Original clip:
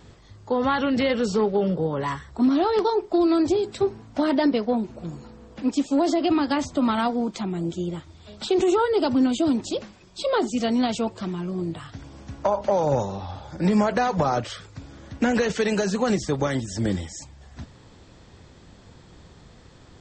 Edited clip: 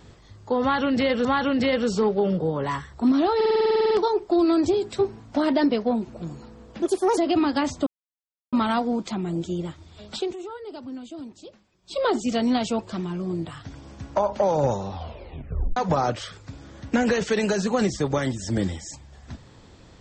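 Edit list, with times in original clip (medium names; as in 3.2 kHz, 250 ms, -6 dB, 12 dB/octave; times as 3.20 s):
0.62–1.25 s: loop, 2 plays
2.73 s: stutter 0.05 s, 12 plays
5.64–6.12 s: speed 135%
6.81 s: insert silence 0.66 s
8.41–10.31 s: dip -16 dB, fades 0.21 s
13.23 s: tape stop 0.82 s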